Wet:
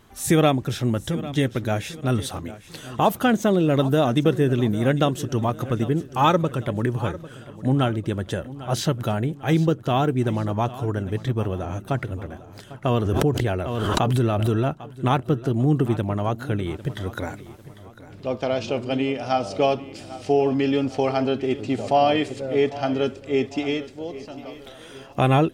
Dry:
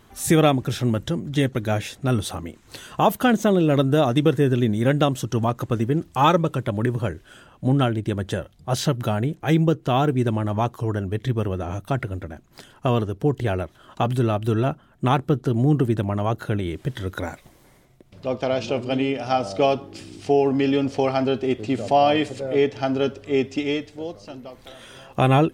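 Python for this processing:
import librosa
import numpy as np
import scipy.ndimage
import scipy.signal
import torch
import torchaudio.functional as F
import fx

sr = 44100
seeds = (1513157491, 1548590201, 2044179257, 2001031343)

y = fx.echo_feedback(x, sr, ms=799, feedback_pct=43, wet_db=-16.5)
y = fx.pre_swell(y, sr, db_per_s=24.0, at=(12.91, 14.65))
y = y * 10.0 ** (-1.0 / 20.0)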